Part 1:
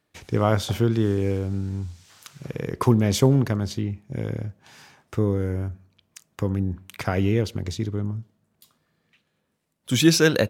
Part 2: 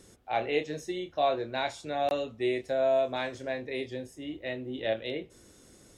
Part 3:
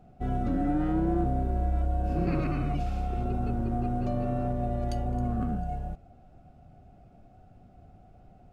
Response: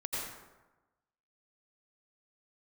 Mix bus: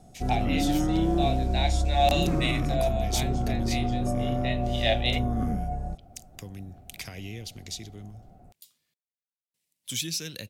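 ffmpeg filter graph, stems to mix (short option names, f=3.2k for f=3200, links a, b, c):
-filter_complex "[0:a]acrossover=split=230[a][b];[b]acompressor=threshold=-28dB:ratio=4[c];[a][c]amix=inputs=2:normalize=0,volume=-16dB,asplit=3[d][e][f];[d]atrim=end=8.94,asetpts=PTS-STARTPTS,afade=t=out:st=8.936:d=0.004:c=hsin[g];[e]atrim=start=8.94:end=9.54,asetpts=PTS-STARTPTS,volume=0[h];[f]atrim=start=9.54,asetpts=PTS-STARTPTS,afade=t=in:d=0.004:c=hsin[i];[g][h][i]concat=n=3:v=0:a=1,asplit=2[j][k];[1:a]agate=range=-23dB:threshold=-44dB:ratio=16:detection=peak,highpass=f=720:t=q:w=4.1,volume=-3dB[l];[2:a]lowpass=f=1.4k:w=0.5412,lowpass=f=1.4k:w=1.3066,volume=2dB[m];[k]apad=whole_len=263451[n];[l][n]sidechaincompress=threshold=-45dB:ratio=8:attack=11:release=526[o];[j][o][m]amix=inputs=3:normalize=0,aexciter=amount=4.9:drive=6.6:freq=2k"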